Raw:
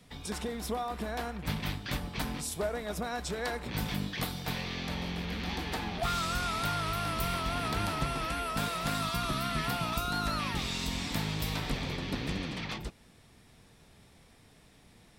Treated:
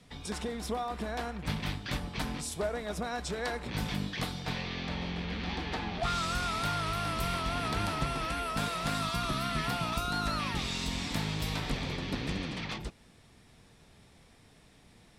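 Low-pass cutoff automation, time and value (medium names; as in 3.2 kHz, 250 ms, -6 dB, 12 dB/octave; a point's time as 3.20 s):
4.13 s 10 kHz
4.70 s 5.1 kHz
5.90 s 5.1 kHz
6.30 s 11 kHz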